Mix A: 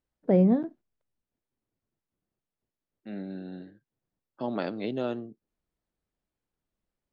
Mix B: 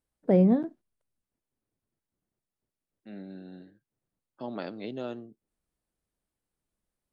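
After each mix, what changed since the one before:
second voice −5.5 dB
master: remove high-frequency loss of the air 75 metres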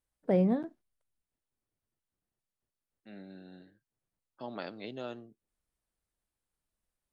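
master: add parametric band 250 Hz −6.5 dB 2.7 octaves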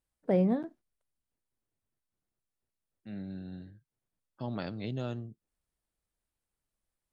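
second voice: remove band-pass filter 330–5,600 Hz

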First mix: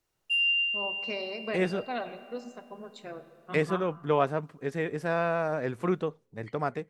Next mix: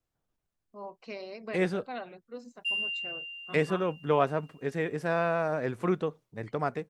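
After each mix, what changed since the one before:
first voice −3.5 dB
background: entry +2.35 s
reverb: off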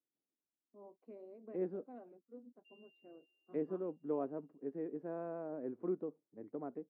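master: add four-pole ladder band-pass 330 Hz, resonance 50%

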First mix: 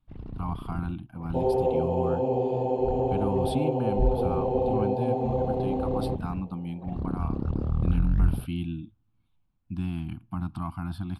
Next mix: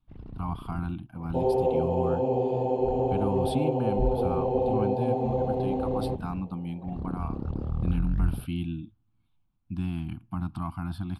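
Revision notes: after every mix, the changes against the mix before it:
first sound −3.5 dB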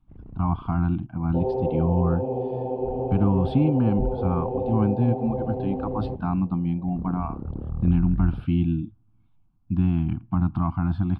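speech +10.0 dB
master: add head-to-tape spacing loss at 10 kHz 38 dB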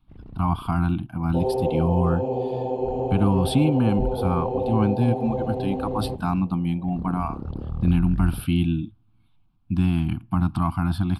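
master: remove head-to-tape spacing loss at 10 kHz 38 dB

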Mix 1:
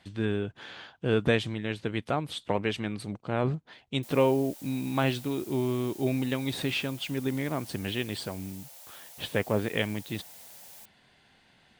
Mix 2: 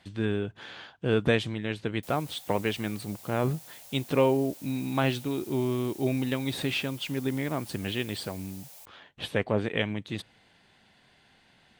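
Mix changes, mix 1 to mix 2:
background: entry −2.00 s
reverb: on, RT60 0.80 s

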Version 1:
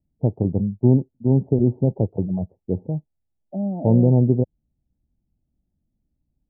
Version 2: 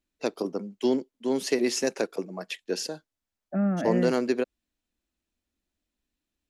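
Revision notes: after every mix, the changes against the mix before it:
first voice: add Bessel high-pass filter 410 Hz, order 6
master: remove Chebyshev low-pass filter 880 Hz, order 6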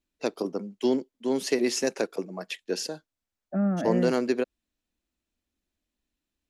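second voice: add low-pass filter 1,800 Hz

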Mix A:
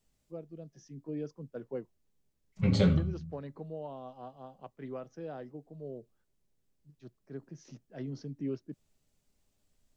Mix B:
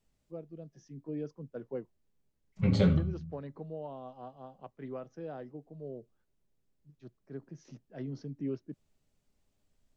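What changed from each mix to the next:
master: add high-shelf EQ 4,200 Hz −6.5 dB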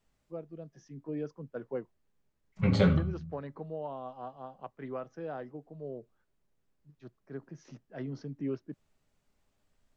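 master: add parametric band 1,300 Hz +7 dB 2.1 octaves

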